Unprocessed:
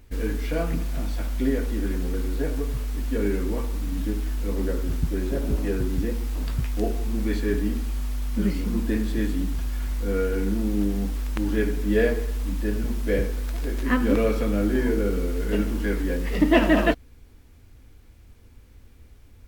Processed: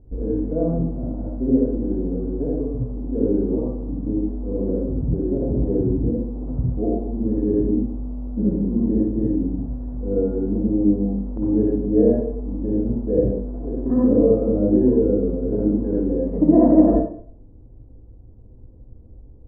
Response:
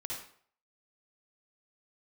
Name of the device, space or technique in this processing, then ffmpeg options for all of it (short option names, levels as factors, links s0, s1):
next room: -filter_complex "[0:a]lowpass=f=640:w=0.5412,lowpass=f=640:w=1.3066[s0];[1:a]atrim=start_sample=2205[s1];[s0][s1]afir=irnorm=-1:irlink=0,volume=2"